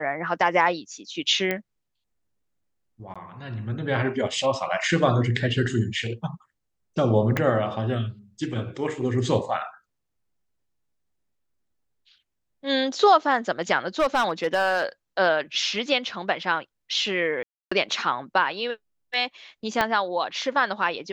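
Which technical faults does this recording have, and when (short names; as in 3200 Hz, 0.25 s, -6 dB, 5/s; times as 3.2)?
1.51 pop -12 dBFS
3.14–3.16 gap 16 ms
7.37 pop -10 dBFS
13.99–14.84 clipped -16.5 dBFS
17.43–17.71 gap 0.285 s
19.81 pop -8 dBFS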